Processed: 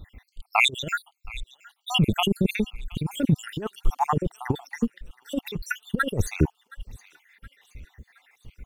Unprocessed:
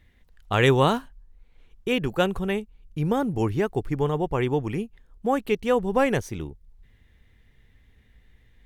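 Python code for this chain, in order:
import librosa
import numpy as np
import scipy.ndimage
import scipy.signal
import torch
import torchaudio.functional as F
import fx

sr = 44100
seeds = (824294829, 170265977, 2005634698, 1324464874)

p1 = fx.spec_dropout(x, sr, seeds[0], share_pct=72)
p2 = fx.over_compress(p1, sr, threshold_db=-30.0, ratio=-0.5)
p3 = fx.low_shelf(p2, sr, hz=240.0, db=4.0)
p4 = p3 + fx.echo_wet_highpass(p3, sr, ms=720, feedback_pct=48, hz=1500.0, wet_db=-19.0, dry=0)
y = p4 * 10.0 ** (8.0 / 20.0)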